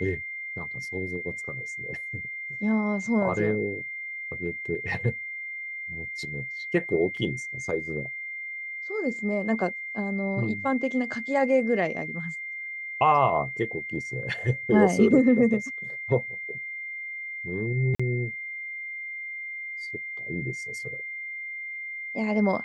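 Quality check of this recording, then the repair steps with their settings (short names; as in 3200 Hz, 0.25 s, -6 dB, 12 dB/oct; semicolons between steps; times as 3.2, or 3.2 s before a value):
tone 2100 Hz -33 dBFS
7.17 gap 3.4 ms
17.95–18 gap 45 ms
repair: notch 2100 Hz, Q 30; interpolate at 7.17, 3.4 ms; interpolate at 17.95, 45 ms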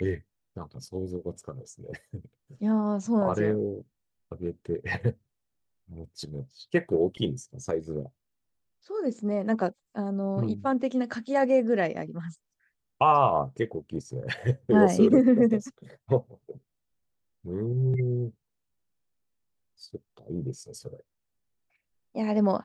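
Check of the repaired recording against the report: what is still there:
none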